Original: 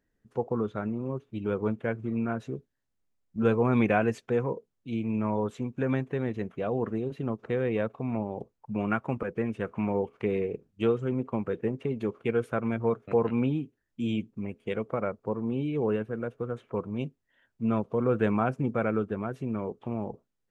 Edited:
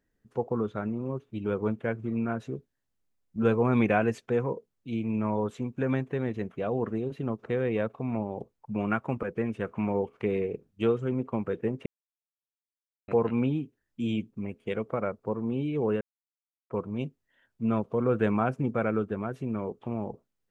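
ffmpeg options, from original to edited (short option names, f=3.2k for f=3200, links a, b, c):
-filter_complex "[0:a]asplit=5[a][b][c][d][e];[a]atrim=end=11.86,asetpts=PTS-STARTPTS,afade=t=out:st=11.856:d=0.004:c=hsin[f];[b]atrim=start=11.86:end=13.08,asetpts=PTS-STARTPTS,volume=0[g];[c]atrim=start=13.08:end=16.01,asetpts=PTS-STARTPTS,afade=t=in:d=0.004:c=hsin,afade=t=out:st=2.926:d=0.004:c=hsin[h];[d]atrim=start=16.01:end=16.7,asetpts=PTS-STARTPTS,volume=0[i];[e]atrim=start=16.7,asetpts=PTS-STARTPTS,afade=t=in:d=0.004:c=hsin[j];[f][g][h][i][j]concat=n=5:v=0:a=1"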